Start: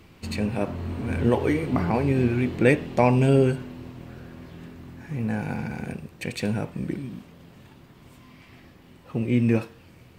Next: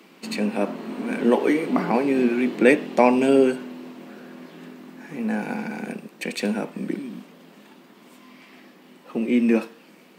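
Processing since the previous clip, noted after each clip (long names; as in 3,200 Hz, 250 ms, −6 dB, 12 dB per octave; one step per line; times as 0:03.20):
Butterworth high-pass 190 Hz 48 dB per octave
level +3.5 dB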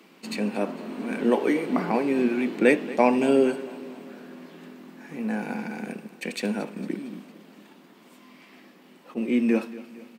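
repeating echo 228 ms, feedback 55%, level −18 dB
level that may rise only so fast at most 510 dB per second
level −3 dB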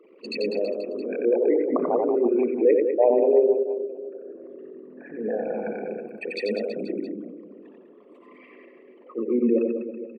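spectral envelope exaggerated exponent 3
on a send: reverse bouncing-ball delay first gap 90 ms, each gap 1.2×, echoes 5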